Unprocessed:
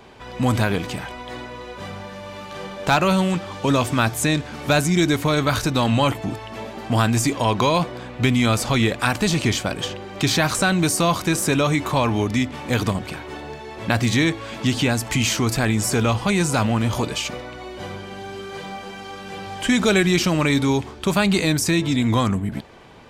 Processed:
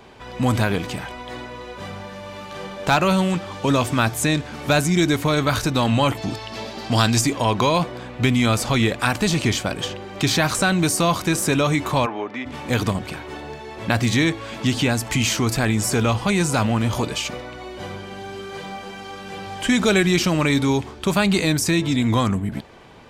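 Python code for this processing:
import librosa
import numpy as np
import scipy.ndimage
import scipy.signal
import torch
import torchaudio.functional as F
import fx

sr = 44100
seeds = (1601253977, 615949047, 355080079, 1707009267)

y = fx.peak_eq(x, sr, hz=4700.0, db=12.0, octaves=1.0, at=(6.17, 7.21))
y = fx.bandpass_edges(y, sr, low_hz=460.0, high_hz=2000.0, at=(12.05, 12.45), fade=0.02)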